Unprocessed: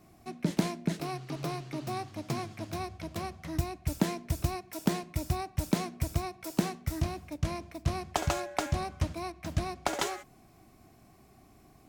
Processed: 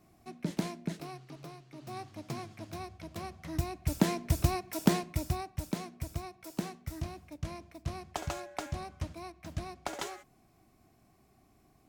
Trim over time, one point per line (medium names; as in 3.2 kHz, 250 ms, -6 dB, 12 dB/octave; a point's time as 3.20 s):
0.84 s -5 dB
1.67 s -14.5 dB
1.99 s -5.5 dB
3.06 s -5.5 dB
4.25 s +3 dB
4.93 s +3 dB
5.72 s -7 dB